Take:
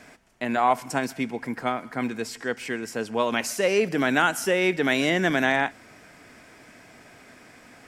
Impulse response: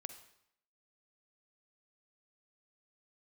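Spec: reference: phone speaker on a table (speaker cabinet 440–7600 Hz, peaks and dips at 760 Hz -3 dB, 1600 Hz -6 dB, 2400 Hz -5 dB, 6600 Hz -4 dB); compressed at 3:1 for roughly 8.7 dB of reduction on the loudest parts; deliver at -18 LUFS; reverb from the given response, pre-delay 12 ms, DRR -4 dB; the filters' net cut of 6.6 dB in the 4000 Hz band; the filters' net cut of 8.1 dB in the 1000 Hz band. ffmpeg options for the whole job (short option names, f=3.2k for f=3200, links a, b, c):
-filter_complex "[0:a]equalizer=f=1k:t=o:g=-8,equalizer=f=4k:t=o:g=-7,acompressor=threshold=-31dB:ratio=3,asplit=2[a][b];[1:a]atrim=start_sample=2205,adelay=12[c];[b][c]afir=irnorm=-1:irlink=0,volume=8dB[d];[a][d]amix=inputs=2:normalize=0,highpass=f=440:w=0.5412,highpass=f=440:w=1.3066,equalizer=f=760:t=q:w=4:g=-3,equalizer=f=1.6k:t=q:w=4:g=-6,equalizer=f=2.4k:t=q:w=4:g=-5,equalizer=f=6.6k:t=q:w=4:g=-4,lowpass=f=7.6k:w=0.5412,lowpass=f=7.6k:w=1.3066,volume=15.5dB"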